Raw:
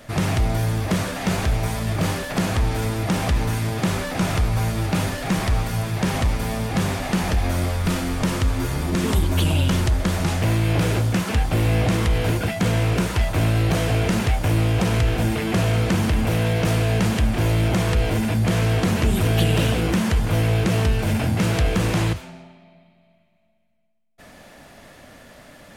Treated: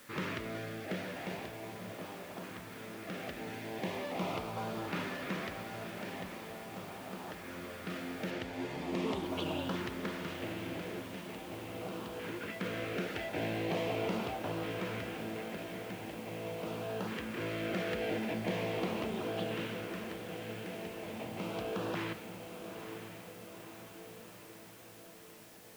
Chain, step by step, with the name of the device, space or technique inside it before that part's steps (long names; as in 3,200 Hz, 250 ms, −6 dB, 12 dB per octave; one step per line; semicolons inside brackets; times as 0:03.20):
shortwave radio (band-pass filter 300–2,900 Hz; amplitude tremolo 0.22 Hz, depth 72%; auto-filter notch saw up 0.41 Hz 650–2,200 Hz; white noise bed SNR 19 dB)
0:08.30–0:09.22: low-pass filter 6,200 Hz → 11,000 Hz
feedback delay with all-pass diffusion 958 ms, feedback 62%, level −8.5 dB
level −7.5 dB